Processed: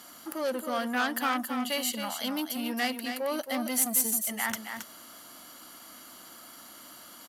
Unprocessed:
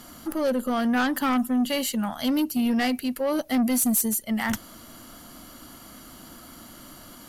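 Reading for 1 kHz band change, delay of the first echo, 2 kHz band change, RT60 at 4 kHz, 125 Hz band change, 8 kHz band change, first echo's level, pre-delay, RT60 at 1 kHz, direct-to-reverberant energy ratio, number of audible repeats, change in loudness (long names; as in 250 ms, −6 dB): −3.0 dB, 271 ms, −1.5 dB, no reverb audible, below −10 dB, −1.0 dB, −7.5 dB, no reverb audible, no reverb audible, no reverb audible, 1, −5.0 dB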